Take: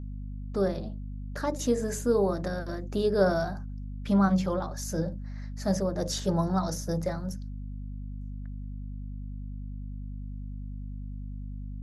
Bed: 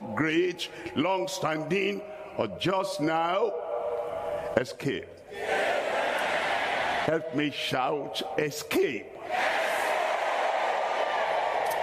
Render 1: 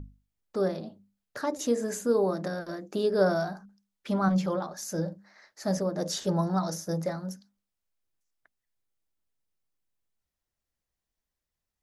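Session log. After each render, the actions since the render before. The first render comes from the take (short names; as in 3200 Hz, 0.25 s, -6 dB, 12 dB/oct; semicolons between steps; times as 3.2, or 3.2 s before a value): notches 50/100/150/200/250 Hz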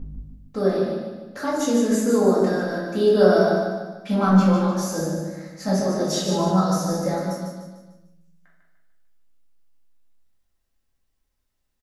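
feedback echo 0.149 s, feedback 43%, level -5.5 dB; shoebox room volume 210 m³, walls mixed, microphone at 2.1 m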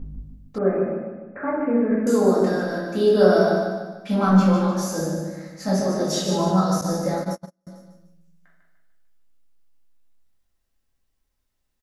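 0.58–2.07 Chebyshev low-pass 2500 Hz, order 8; 6.81–7.67 gate -28 dBFS, range -39 dB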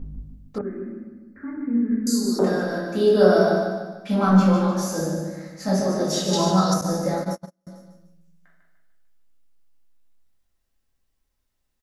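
0.61–2.39 EQ curve 100 Hz 0 dB, 150 Hz -23 dB, 230 Hz +1 dB, 350 Hz -7 dB, 620 Hz -28 dB, 900 Hz -21 dB, 2000 Hz -8 dB, 3000 Hz -27 dB, 4300 Hz +14 dB, 6600 Hz +7 dB; 6.33–6.74 bell 5200 Hz +8.5 dB 2.5 oct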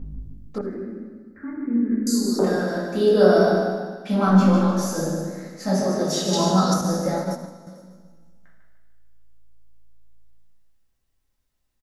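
frequency-shifting echo 81 ms, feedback 41%, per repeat +55 Hz, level -15 dB; digital reverb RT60 1.8 s, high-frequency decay 1×, pre-delay 15 ms, DRR 13.5 dB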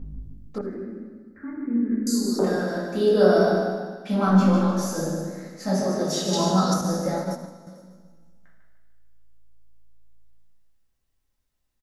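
gain -2 dB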